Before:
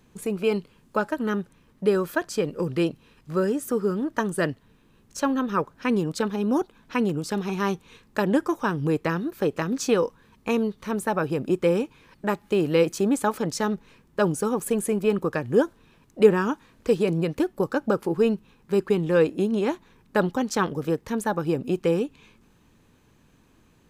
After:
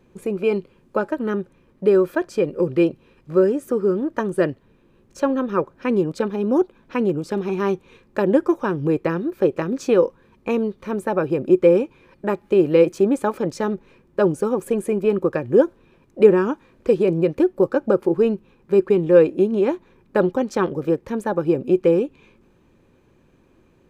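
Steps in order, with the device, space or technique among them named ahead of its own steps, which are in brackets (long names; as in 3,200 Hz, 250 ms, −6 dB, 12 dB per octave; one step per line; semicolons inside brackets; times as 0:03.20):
inside a helmet (high-shelf EQ 3,300 Hz −10 dB; hollow resonant body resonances 370/530/2,400 Hz, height 9 dB, ringing for 45 ms)
level +1 dB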